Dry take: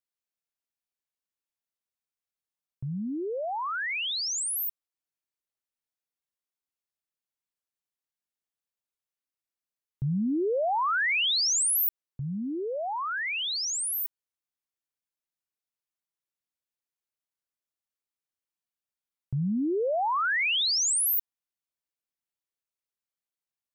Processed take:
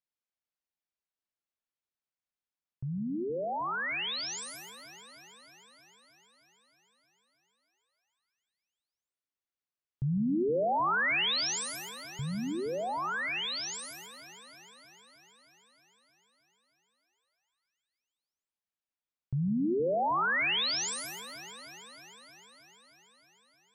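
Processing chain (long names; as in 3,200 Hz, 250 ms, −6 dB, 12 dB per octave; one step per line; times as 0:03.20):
high-frequency loss of the air 93 metres
on a send: delay that swaps between a low-pass and a high-pass 156 ms, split 1,900 Hz, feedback 83%, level −13 dB
on the sum: dense smooth reverb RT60 0.61 s, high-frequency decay 1×, pre-delay 100 ms, DRR 14.5 dB
level −2 dB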